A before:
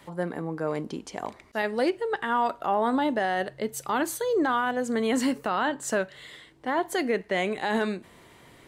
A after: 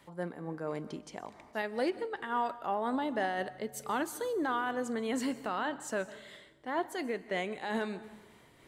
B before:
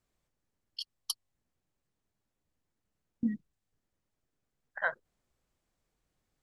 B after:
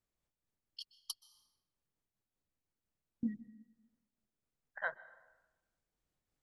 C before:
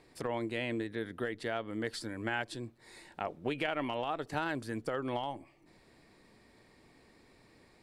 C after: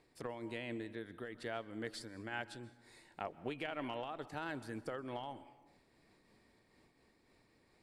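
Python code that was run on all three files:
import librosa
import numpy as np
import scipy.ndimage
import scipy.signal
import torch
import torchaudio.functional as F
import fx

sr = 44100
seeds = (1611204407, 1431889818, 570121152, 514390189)

y = fx.rev_plate(x, sr, seeds[0], rt60_s=1.1, hf_ratio=0.65, predelay_ms=115, drr_db=16.0)
y = fx.am_noise(y, sr, seeds[1], hz=5.7, depth_pct=60)
y = y * 10.0 ** (-5.0 / 20.0)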